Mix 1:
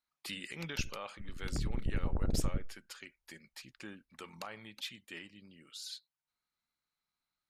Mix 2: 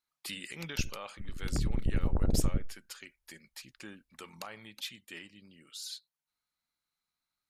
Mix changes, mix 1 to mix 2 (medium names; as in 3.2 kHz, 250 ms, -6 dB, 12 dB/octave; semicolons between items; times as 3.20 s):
background +4.5 dB; master: add treble shelf 6.2 kHz +7.5 dB